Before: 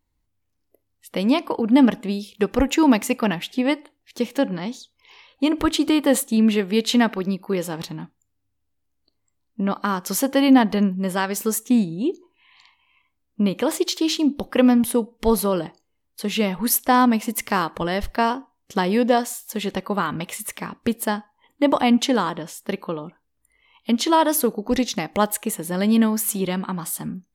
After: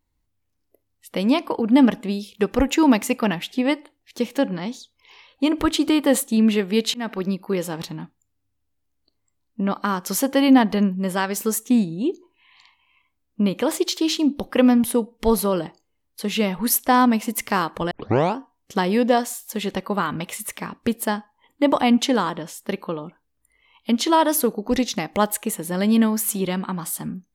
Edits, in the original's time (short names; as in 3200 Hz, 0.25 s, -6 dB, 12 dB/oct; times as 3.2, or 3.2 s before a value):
6.94–7.21 fade in
17.91 tape start 0.46 s